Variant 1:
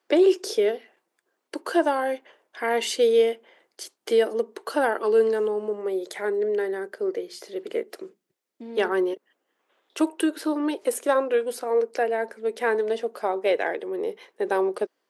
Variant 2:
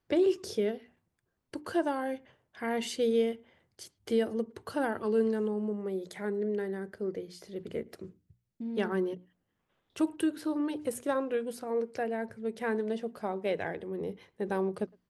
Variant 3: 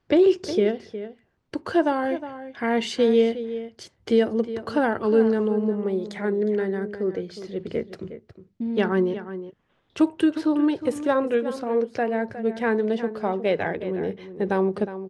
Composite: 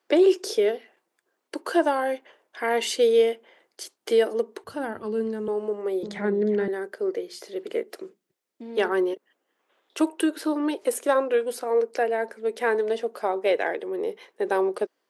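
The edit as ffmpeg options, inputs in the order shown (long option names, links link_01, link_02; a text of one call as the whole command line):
ffmpeg -i take0.wav -i take1.wav -i take2.wav -filter_complex "[0:a]asplit=3[link_01][link_02][link_03];[link_01]atrim=end=4.642[link_04];[1:a]atrim=start=4.638:end=5.482[link_05];[link_02]atrim=start=5.478:end=6.032[link_06];[2:a]atrim=start=6.028:end=6.682[link_07];[link_03]atrim=start=6.678[link_08];[link_04][link_05]acrossfade=duration=0.004:curve1=hsin:curve2=hsin[link_09];[link_09][link_06]acrossfade=duration=0.004:curve1=hsin:curve2=hsin[link_10];[link_10][link_07]acrossfade=duration=0.004:curve1=hsin:curve2=hsin[link_11];[link_11][link_08]acrossfade=duration=0.004:curve1=hsin:curve2=hsin" out.wav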